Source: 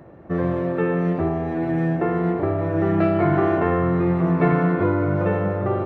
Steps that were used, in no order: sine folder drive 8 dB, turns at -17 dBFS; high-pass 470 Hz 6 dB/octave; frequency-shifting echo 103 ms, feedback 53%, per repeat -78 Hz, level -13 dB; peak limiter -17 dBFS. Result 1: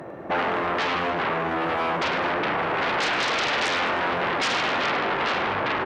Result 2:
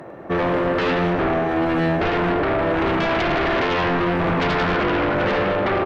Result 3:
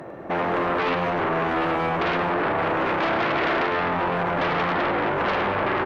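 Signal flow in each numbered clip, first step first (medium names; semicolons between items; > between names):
sine folder > frequency-shifting echo > peak limiter > high-pass; high-pass > peak limiter > sine folder > frequency-shifting echo; peak limiter > sine folder > high-pass > frequency-shifting echo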